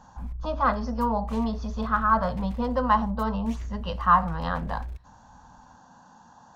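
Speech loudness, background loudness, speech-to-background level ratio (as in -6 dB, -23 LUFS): -26.5 LUFS, -37.5 LUFS, 11.0 dB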